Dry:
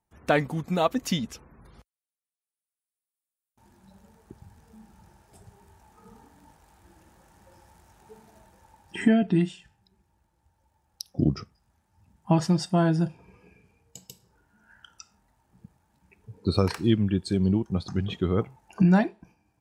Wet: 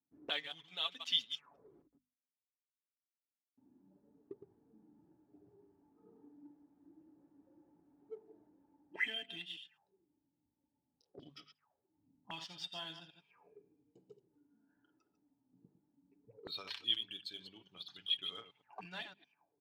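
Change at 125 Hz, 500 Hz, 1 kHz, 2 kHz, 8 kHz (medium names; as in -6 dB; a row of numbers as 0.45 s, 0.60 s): -37.5 dB, -25.0 dB, -20.5 dB, -9.0 dB, -19.0 dB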